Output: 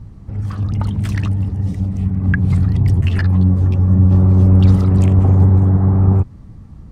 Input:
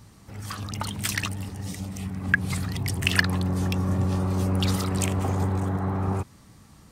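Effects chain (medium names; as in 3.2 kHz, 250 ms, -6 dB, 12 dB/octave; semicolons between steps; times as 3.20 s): tilt EQ -4.5 dB/octave; 3.01–4.11 s: three-phase chorus; trim +1 dB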